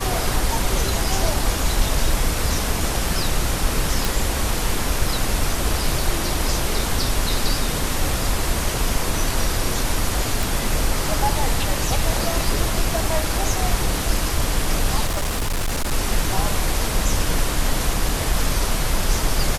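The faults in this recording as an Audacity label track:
4.050000	4.050000	pop
10.430000	10.430000	pop
15.060000	15.930000	clipped -18.5 dBFS
18.090000	18.090000	dropout 2 ms

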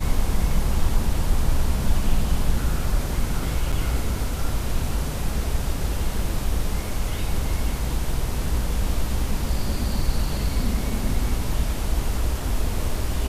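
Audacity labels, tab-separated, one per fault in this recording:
3.720000	3.730000	dropout 6.4 ms

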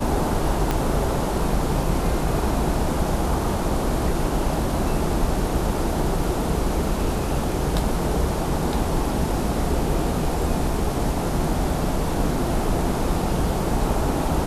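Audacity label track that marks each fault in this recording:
0.710000	0.710000	pop -8 dBFS

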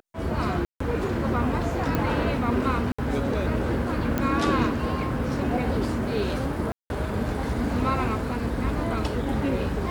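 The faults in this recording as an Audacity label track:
0.650000	0.800000	dropout 154 ms
1.950000	1.950000	pop -12 dBFS
2.920000	2.980000	dropout 65 ms
4.180000	4.180000	pop -11 dBFS
6.720000	6.900000	dropout 181 ms

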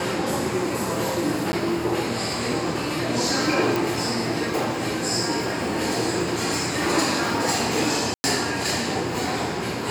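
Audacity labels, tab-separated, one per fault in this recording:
1.520000	1.530000	dropout 10 ms
3.760000	3.760000	pop
8.140000	8.240000	dropout 100 ms

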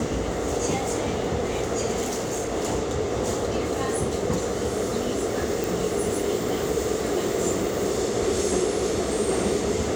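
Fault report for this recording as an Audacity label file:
2.010000	2.520000	clipped -24 dBFS
5.640000	5.640000	pop

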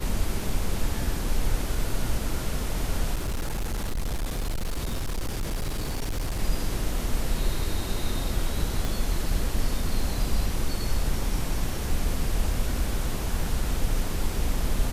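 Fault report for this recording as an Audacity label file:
3.140000	6.400000	clipped -24.5 dBFS
8.850000	8.850000	pop

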